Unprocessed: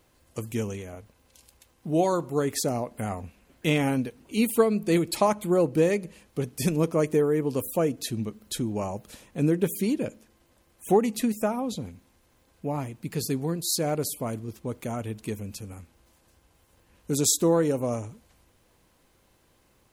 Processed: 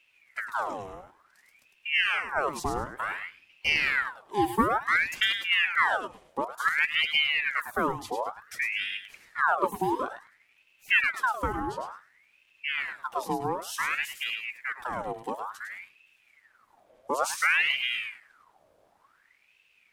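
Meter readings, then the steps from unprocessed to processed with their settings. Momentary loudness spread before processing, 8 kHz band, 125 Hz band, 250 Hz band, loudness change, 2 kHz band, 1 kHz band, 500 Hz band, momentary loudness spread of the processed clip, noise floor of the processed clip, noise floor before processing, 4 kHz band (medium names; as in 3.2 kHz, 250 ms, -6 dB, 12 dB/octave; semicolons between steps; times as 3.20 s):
14 LU, -11.0 dB, -15.0 dB, -11.5 dB, -0.5 dB, +14.5 dB, +4.5 dB, -10.0 dB, 14 LU, -66 dBFS, -64 dBFS, +7.0 dB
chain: tilt EQ -2 dB/octave; thinning echo 104 ms, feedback 23%, high-pass 560 Hz, level -5.5 dB; ring modulator with a swept carrier 1.6 kHz, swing 65%, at 0.56 Hz; trim -3 dB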